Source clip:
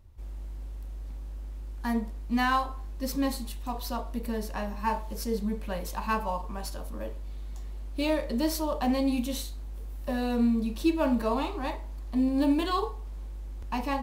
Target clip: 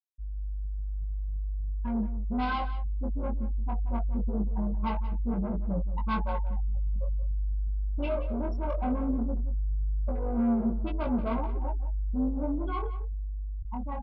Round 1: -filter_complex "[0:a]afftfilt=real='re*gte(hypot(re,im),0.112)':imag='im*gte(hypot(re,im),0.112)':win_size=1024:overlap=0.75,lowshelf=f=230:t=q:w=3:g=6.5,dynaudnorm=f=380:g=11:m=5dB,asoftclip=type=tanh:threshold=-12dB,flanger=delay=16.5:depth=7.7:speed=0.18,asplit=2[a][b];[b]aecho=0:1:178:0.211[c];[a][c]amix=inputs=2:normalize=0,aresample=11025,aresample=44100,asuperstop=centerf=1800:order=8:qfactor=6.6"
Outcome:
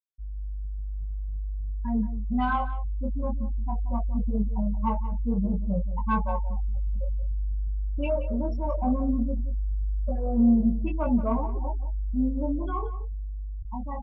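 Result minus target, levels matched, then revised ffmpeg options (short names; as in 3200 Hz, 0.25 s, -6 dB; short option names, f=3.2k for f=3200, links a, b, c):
soft clip: distortion -12 dB
-filter_complex "[0:a]afftfilt=real='re*gte(hypot(re,im),0.112)':imag='im*gte(hypot(re,im),0.112)':win_size=1024:overlap=0.75,lowshelf=f=230:t=q:w=3:g=6.5,dynaudnorm=f=380:g=11:m=5dB,asoftclip=type=tanh:threshold=-22.5dB,flanger=delay=16.5:depth=7.7:speed=0.18,asplit=2[a][b];[b]aecho=0:1:178:0.211[c];[a][c]amix=inputs=2:normalize=0,aresample=11025,aresample=44100,asuperstop=centerf=1800:order=8:qfactor=6.6"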